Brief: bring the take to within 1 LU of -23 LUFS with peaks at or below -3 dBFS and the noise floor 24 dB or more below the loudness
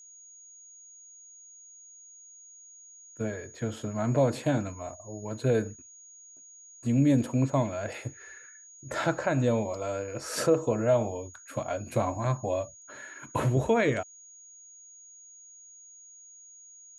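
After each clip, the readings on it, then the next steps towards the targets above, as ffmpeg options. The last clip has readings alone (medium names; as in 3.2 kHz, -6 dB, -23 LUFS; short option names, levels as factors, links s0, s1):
steady tone 6.7 kHz; tone level -49 dBFS; loudness -29.0 LUFS; peak level -12.5 dBFS; loudness target -23.0 LUFS
-> -af "bandreject=f=6700:w=30"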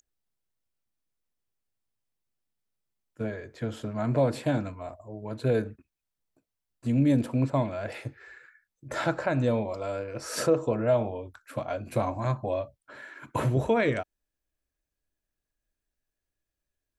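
steady tone not found; loudness -29.0 LUFS; peak level -12.5 dBFS; loudness target -23.0 LUFS
-> -af "volume=2"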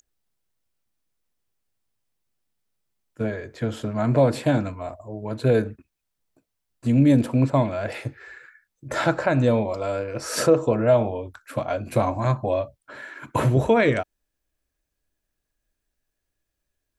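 loudness -23.0 LUFS; peak level -6.5 dBFS; noise floor -81 dBFS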